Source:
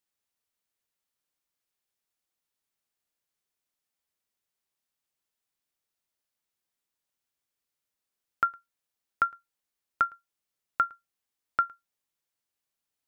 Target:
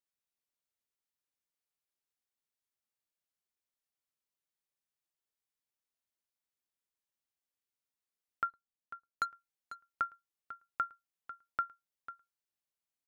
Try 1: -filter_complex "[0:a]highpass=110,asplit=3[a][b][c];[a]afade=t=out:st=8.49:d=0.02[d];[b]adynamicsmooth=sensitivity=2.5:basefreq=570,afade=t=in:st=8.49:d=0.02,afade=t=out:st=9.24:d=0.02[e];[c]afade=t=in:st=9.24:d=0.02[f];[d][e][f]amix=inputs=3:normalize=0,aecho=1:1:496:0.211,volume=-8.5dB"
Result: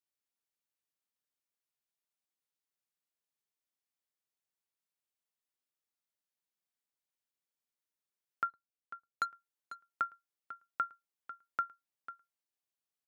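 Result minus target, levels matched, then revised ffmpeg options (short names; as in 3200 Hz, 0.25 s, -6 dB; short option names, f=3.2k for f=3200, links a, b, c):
125 Hz band -2.5 dB
-filter_complex "[0:a]asplit=3[a][b][c];[a]afade=t=out:st=8.49:d=0.02[d];[b]adynamicsmooth=sensitivity=2.5:basefreq=570,afade=t=in:st=8.49:d=0.02,afade=t=out:st=9.24:d=0.02[e];[c]afade=t=in:st=9.24:d=0.02[f];[d][e][f]amix=inputs=3:normalize=0,aecho=1:1:496:0.211,volume=-8.5dB"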